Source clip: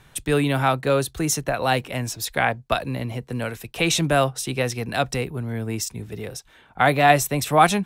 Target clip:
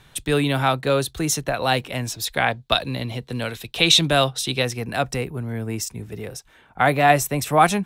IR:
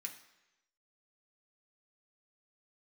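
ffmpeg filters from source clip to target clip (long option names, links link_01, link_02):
-af "asetnsamples=nb_out_samples=441:pad=0,asendcmd='2.47 equalizer g 12;4.65 equalizer g -3',equalizer=frequency=3700:width_type=o:width=0.66:gain=5"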